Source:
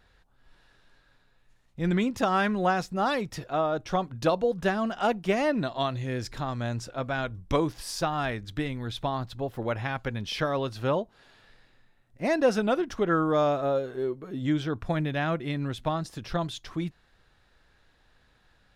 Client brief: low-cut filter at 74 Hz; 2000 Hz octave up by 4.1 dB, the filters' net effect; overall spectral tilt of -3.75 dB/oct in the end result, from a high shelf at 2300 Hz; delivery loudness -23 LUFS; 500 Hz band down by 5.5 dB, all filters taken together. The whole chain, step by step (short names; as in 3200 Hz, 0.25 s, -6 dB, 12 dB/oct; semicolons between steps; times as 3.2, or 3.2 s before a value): HPF 74 Hz; bell 500 Hz -7.5 dB; bell 2000 Hz +4.5 dB; high shelf 2300 Hz +3 dB; gain +6.5 dB